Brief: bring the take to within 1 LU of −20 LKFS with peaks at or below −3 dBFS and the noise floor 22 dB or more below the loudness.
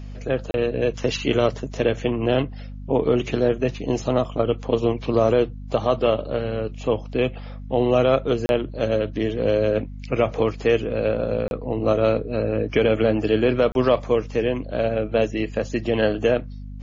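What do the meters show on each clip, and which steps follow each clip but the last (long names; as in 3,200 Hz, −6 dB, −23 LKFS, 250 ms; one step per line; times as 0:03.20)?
number of dropouts 4; longest dropout 31 ms; mains hum 50 Hz; hum harmonics up to 250 Hz; level of the hum −32 dBFS; integrated loudness −22.5 LKFS; sample peak −6.5 dBFS; target loudness −20.0 LKFS
→ repair the gap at 0:00.51/0:08.46/0:11.48/0:13.72, 31 ms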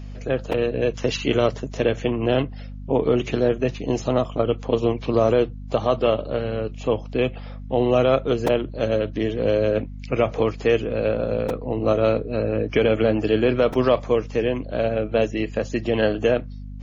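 number of dropouts 0; mains hum 50 Hz; hum harmonics up to 250 Hz; level of the hum −32 dBFS
→ hum removal 50 Hz, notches 5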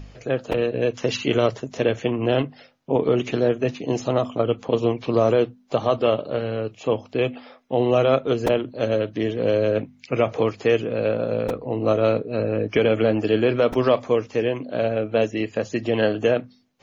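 mains hum none found; integrated loudness −22.5 LKFS; sample peak −7.0 dBFS; target loudness −20.0 LKFS
→ level +2.5 dB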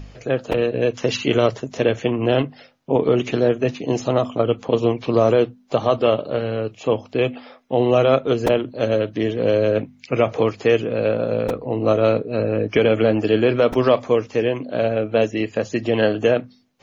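integrated loudness −20.0 LKFS; sample peak −4.5 dBFS; background noise floor −51 dBFS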